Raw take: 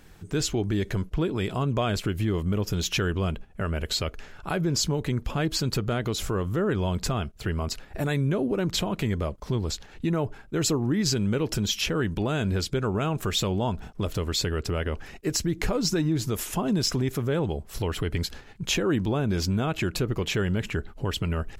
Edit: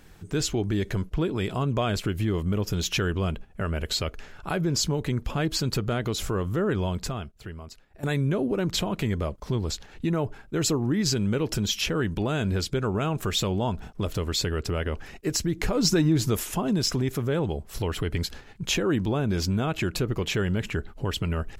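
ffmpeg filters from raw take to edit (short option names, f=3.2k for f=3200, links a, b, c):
-filter_complex "[0:a]asplit=4[a][b][c][d];[a]atrim=end=8.03,asetpts=PTS-STARTPTS,afade=t=out:st=6.79:d=1.24:c=qua:silence=0.149624[e];[b]atrim=start=8.03:end=15.772,asetpts=PTS-STARTPTS,afade=t=in:d=0.004:c=hsin:silence=0.149624[f];[c]atrim=start=15.768:end=16.392,asetpts=PTS-STARTPTS,volume=3.5dB[g];[d]atrim=start=16.388[h];[e][f]concat=n=2:v=0:a=1[i];[i][g]acrossfade=d=0.004:c1=hsin:c2=hsin[j];[j][h]acrossfade=d=0.004:c1=hsin:c2=hsin"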